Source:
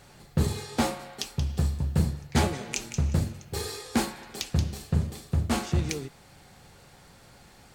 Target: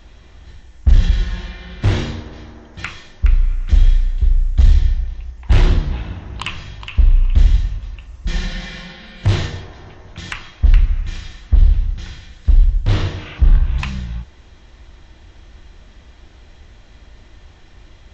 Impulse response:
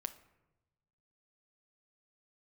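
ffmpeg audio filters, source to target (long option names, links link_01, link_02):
-af "asoftclip=type=hard:threshold=-18dB,bass=frequency=250:gain=13,treble=frequency=4000:gain=3,asetrate=18846,aresample=44100,volume=3dB"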